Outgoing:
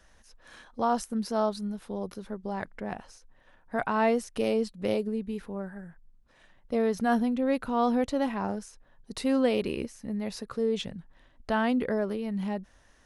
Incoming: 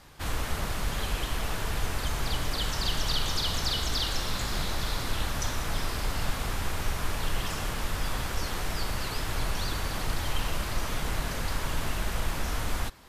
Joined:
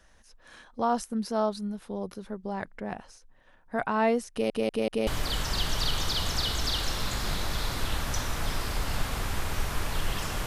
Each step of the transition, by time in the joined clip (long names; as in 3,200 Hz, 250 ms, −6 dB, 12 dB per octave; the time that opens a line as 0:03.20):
outgoing
0:04.31: stutter in place 0.19 s, 4 plays
0:05.07: continue with incoming from 0:02.35